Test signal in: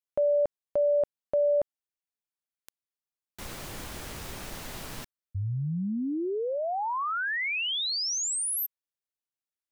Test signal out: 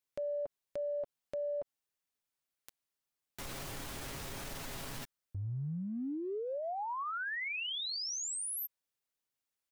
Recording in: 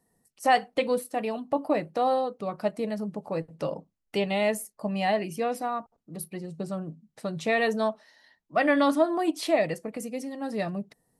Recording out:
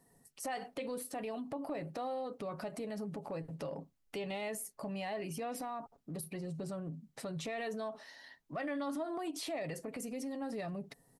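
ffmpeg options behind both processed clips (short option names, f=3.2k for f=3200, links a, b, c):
-af "aecho=1:1:7.3:0.35,acompressor=threshold=-42dB:ratio=4:attack=0.41:release=72:knee=1:detection=peak,volume=3.5dB"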